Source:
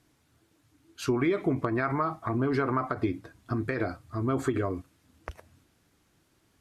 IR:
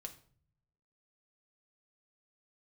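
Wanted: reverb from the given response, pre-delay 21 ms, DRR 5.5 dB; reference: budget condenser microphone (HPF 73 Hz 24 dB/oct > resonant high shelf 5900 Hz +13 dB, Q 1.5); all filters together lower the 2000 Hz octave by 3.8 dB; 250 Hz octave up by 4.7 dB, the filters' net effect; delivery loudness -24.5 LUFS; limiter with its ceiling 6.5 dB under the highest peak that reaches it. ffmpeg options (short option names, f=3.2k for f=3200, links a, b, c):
-filter_complex "[0:a]equalizer=f=250:t=o:g=6,equalizer=f=2k:t=o:g=-4,alimiter=limit=-17dB:level=0:latency=1,asplit=2[a][b];[1:a]atrim=start_sample=2205,adelay=21[c];[b][c]afir=irnorm=-1:irlink=0,volume=-1dB[d];[a][d]amix=inputs=2:normalize=0,highpass=f=73:w=0.5412,highpass=f=73:w=1.3066,highshelf=f=5.9k:t=q:w=1.5:g=13,volume=2.5dB"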